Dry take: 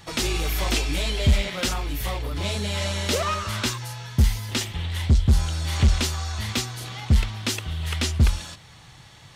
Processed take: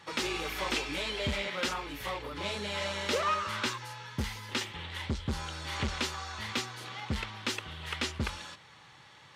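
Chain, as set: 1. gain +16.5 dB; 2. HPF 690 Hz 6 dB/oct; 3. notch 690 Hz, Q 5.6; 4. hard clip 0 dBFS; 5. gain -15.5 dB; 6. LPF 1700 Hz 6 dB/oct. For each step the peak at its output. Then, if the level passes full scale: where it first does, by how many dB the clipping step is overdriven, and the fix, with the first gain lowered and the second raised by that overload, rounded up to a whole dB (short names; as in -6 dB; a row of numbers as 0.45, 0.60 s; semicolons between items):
+5.0, +3.5, +4.0, 0.0, -15.5, -18.5 dBFS; step 1, 4.0 dB; step 1 +12.5 dB, step 5 -11.5 dB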